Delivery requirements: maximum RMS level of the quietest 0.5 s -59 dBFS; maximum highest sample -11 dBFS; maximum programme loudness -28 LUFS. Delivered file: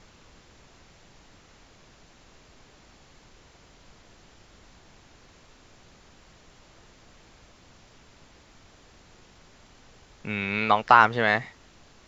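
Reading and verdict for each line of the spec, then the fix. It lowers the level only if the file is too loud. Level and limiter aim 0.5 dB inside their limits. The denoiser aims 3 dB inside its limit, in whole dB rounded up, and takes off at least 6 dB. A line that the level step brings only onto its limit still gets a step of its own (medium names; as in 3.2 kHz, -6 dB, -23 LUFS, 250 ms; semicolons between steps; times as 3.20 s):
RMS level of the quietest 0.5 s -55 dBFS: fail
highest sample -2.0 dBFS: fail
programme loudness -21.5 LUFS: fail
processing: trim -7 dB; peak limiter -11.5 dBFS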